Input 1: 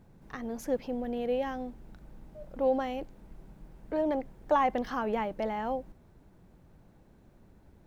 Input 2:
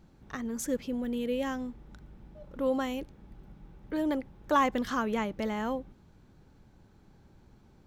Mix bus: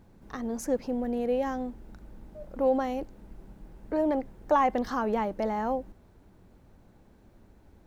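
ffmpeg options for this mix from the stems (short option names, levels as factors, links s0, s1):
-filter_complex "[0:a]volume=1.19[s0];[1:a]alimiter=level_in=1.26:limit=0.0631:level=0:latency=1,volume=0.794,volume=0.422[s1];[s0][s1]amix=inputs=2:normalize=0,equalizer=f=150:w=7.9:g=-12.5"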